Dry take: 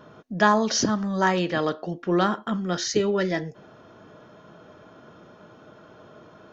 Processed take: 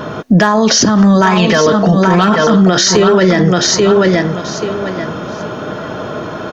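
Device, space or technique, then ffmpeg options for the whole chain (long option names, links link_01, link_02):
loud club master: -filter_complex "[0:a]asettb=1/sr,asplit=3[link_01][link_02][link_03];[link_01]atrim=end=1.214[link_04];[link_02]atrim=start=1.21:end=2.48,asetpts=PTS-STARTPTS,afade=type=in:duration=0.004:curve=qsin,afade=type=out:start_time=1.266:duration=0.004:curve=qsin,aecho=1:1:4.5:0.87,atrim=end_sample=56007[link_05];[link_03]atrim=start=2.476[link_06];[link_04][link_05]acrossfade=duration=0.004:curve1=hsin:curve2=qsin[link_07];[link_07][link_06]acrossfade=duration=0.004:curve1=qsin:curve2=hsin,aecho=1:1:833|1666|2499:0.376|0.0714|0.0136,acompressor=threshold=-24dB:ratio=3,asoftclip=type=hard:threshold=-16.5dB,alimiter=level_in=26.5dB:limit=-1dB:release=50:level=0:latency=1,volume=-1dB"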